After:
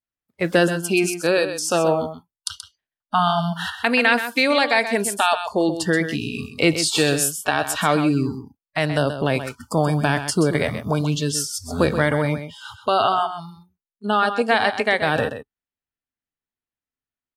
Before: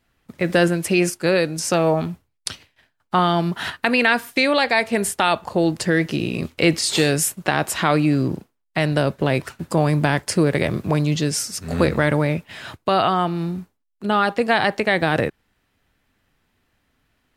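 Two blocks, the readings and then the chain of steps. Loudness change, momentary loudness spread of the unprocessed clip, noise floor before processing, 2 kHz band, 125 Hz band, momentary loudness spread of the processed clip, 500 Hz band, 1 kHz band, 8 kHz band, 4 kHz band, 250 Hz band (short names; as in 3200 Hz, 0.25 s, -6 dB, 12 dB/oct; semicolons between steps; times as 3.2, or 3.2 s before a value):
-0.5 dB, 9 LU, -71 dBFS, 0.0 dB, -3.0 dB, 10 LU, -0.5 dB, +0.5 dB, +0.5 dB, +0.5 dB, -2.0 dB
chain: spectral noise reduction 29 dB; low shelf 180 Hz -3.5 dB; echo 0.129 s -10 dB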